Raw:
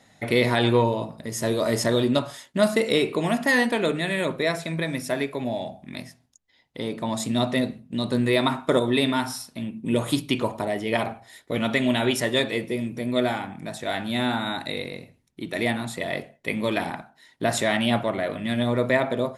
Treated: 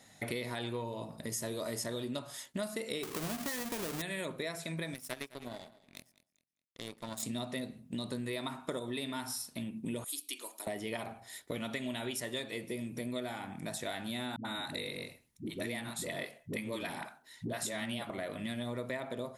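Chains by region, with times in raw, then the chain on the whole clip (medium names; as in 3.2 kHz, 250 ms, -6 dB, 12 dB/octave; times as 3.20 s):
3.03–4.02 s: square wave that keeps the level + compression, threshold -20 dBFS
4.94–7.23 s: treble shelf 5.5 kHz +5.5 dB + power-law waveshaper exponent 2 + feedback delay 207 ms, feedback 30%, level -19 dB
10.04–10.67 s: resonant high-pass 300 Hz, resonance Q 3.1 + differentiator
14.36–18.10 s: peaking EQ 730 Hz -4 dB 0.29 oct + phase dispersion highs, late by 88 ms, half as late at 340 Hz
whole clip: treble shelf 6 kHz +11.5 dB; compression 6:1, threshold -31 dBFS; trim -4.5 dB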